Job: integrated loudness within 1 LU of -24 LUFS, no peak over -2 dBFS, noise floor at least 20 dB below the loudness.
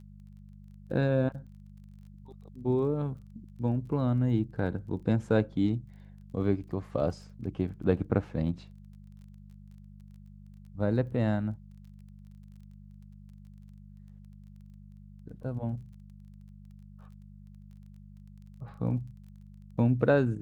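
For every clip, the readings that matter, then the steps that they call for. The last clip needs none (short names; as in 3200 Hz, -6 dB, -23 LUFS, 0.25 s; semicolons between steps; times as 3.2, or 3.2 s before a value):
ticks 22/s; hum 50 Hz; harmonics up to 200 Hz; hum level -49 dBFS; loudness -30.5 LUFS; peak -10.5 dBFS; loudness target -24.0 LUFS
-> de-click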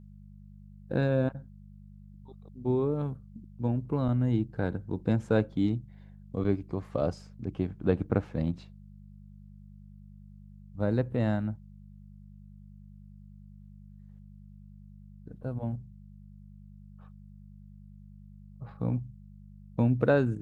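ticks 0/s; hum 50 Hz; harmonics up to 200 Hz; hum level -49 dBFS
-> de-hum 50 Hz, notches 4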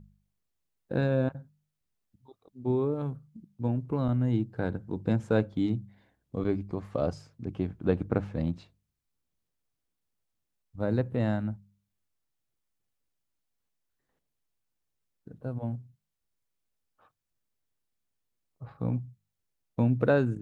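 hum none; loudness -30.5 LUFS; peak -11.0 dBFS; loudness target -24.0 LUFS
-> gain +6.5 dB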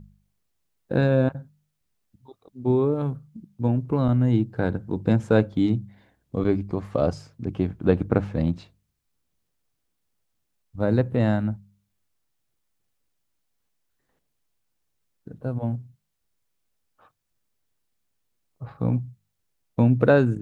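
loudness -24.0 LUFS; peak -4.5 dBFS; noise floor -76 dBFS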